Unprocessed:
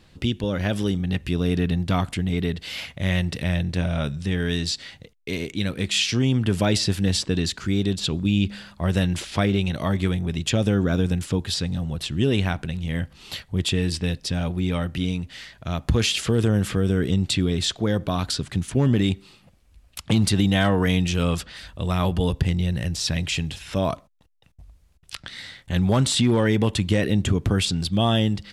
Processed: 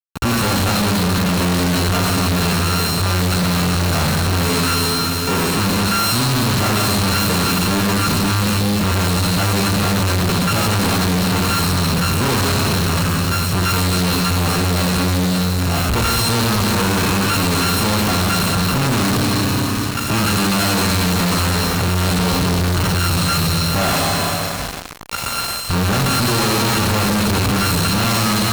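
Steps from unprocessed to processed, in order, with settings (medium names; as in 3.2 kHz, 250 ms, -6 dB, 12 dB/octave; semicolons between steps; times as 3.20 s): sorted samples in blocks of 32 samples; Schroeder reverb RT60 2.6 s, combs from 30 ms, DRR 0.5 dB; fuzz box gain 45 dB, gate -39 dBFS; trim -2.5 dB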